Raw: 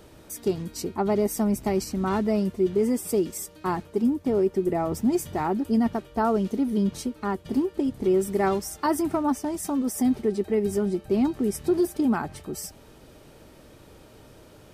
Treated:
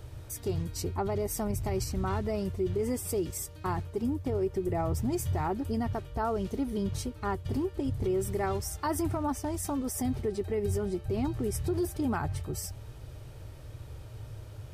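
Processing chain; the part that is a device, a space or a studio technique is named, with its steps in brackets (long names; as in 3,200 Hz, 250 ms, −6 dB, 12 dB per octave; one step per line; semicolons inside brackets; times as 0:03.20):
car stereo with a boomy subwoofer (low shelf with overshoot 150 Hz +10.5 dB, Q 3; brickwall limiter −19.5 dBFS, peak gain reduction 6.5 dB)
level −2.5 dB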